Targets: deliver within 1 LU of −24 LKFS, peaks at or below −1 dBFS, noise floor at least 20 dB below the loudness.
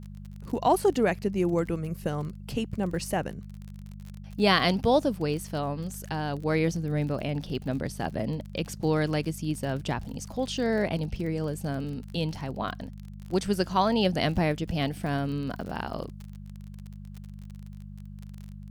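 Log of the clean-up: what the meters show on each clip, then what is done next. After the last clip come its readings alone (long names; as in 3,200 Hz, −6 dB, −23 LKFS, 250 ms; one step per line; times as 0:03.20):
crackle rate 37 per second; mains hum 50 Hz; hum harmonics up to 200 Hz; level of the hum −39 dBFS; integrated loudness −28.5 LKFS; sample peak −8.0 dBFS; target loudness −24.0 LKFS
→ click removal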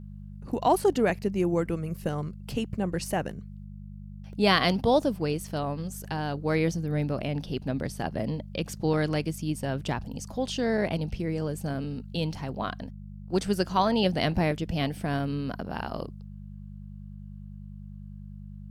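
crackle rate 0.37 per second; mains hum 50 Hz; hum harmonics up to 200 Hz; level of the hum −40 dBFS
→ hum removal 50 Hz, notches 4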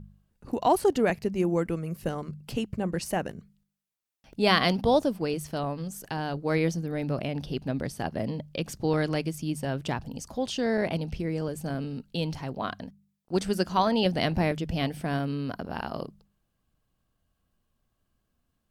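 mains hum none found; integrated loudness −29.0 LKFS; sample peak −8.0 dBFS; target loudness −24.0 LKFS
→ level +5 dB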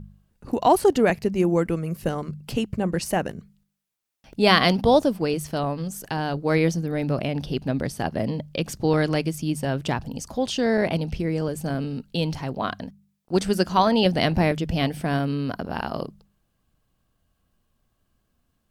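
integrated loudness −24.0 LKFS; sample peak −3.0 dBFS; background noise floor −73 dBFS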